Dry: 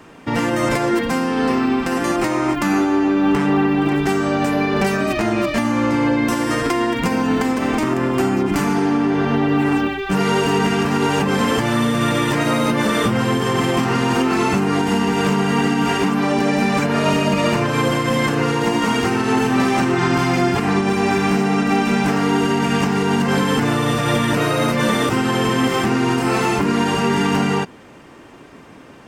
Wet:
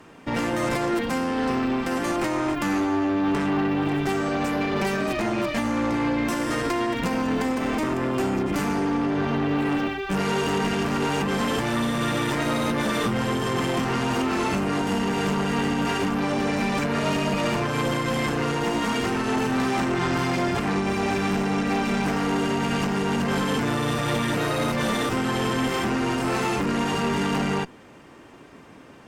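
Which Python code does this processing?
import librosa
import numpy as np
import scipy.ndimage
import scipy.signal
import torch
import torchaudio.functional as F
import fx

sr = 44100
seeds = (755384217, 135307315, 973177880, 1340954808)

y = fx.tube_stage(x, sr, drive_db=16.0, bias=0.55)
y = y * 10.0 ** (-2.5 / 20.0)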